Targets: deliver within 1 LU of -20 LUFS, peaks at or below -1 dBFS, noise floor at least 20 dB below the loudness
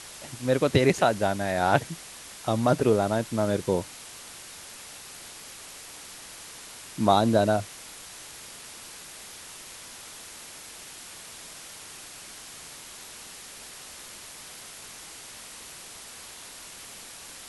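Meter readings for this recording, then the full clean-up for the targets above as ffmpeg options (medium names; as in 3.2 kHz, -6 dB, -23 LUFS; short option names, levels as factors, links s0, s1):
noise floor -44 dBFS; noise floor target -45 dBFS; loudness -25.0 LUFS; peak level -4.5 dBFS; loudness target -20.0 LUFS
-> -af "afftdn=nr=6:nf=-44"
-af "volume=1.78,alimiter=limit=0.891:level=0:latency=1"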